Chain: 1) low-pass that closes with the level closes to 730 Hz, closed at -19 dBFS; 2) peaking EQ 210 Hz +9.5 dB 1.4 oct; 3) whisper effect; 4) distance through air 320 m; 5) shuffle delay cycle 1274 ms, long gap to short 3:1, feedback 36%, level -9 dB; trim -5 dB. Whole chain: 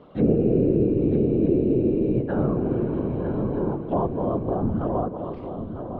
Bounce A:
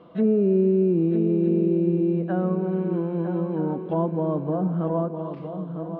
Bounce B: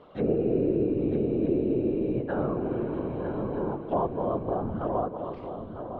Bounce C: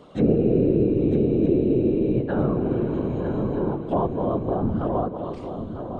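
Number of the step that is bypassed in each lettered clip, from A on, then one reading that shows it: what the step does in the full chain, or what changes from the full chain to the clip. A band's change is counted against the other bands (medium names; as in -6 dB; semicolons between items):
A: 3, 1 kHz band -1.5 dB; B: 2, 125 Hz band -6.0 dB; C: 4, 2 kHz band +2.0 dB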